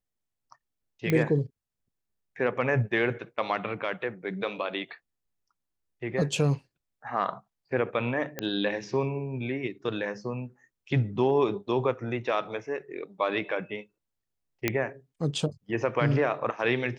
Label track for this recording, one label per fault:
1.100000	1.100000	click −13 dBFS
8.390000	8.390000	click −16 dBFS
14.680000	14.680000	click −9 dBFS

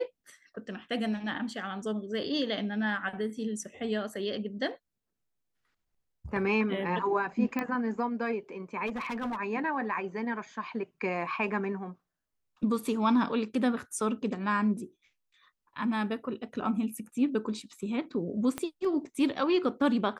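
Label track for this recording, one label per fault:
7.590000	7.590000	click −18 dBFS
8.860000	9.370000	clipping −30.5 dBFS
18.580000	18.580000	click −18 dBFS

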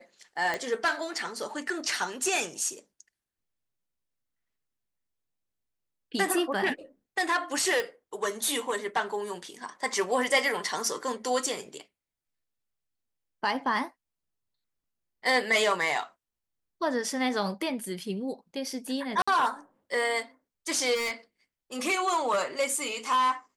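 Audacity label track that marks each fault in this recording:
0.540000	0.540000	click −16 dBFS
7.800000	7.800000	click
19.220000	19.270000	drop-out 55 ms
20.940000	21.130000	clipping −28 dBFS

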